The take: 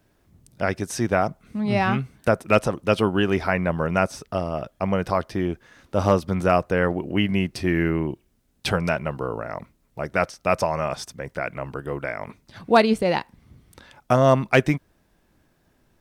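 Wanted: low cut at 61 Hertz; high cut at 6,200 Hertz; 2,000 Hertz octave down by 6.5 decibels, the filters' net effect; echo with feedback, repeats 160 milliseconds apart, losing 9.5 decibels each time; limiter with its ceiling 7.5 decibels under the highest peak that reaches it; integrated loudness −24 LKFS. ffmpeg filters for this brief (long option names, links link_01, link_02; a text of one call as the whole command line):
ffmpeg -i in.wav -af "highpass=61,lowpass=6200,equalizer=frequency=2000:width_type=o:gain=-9,alimiter=limit=-12dB:level=0:latency=1,aecho=1:1:160|320|480|640:0.335|0.111|0.0365|0.012,volume=2dB" out.wav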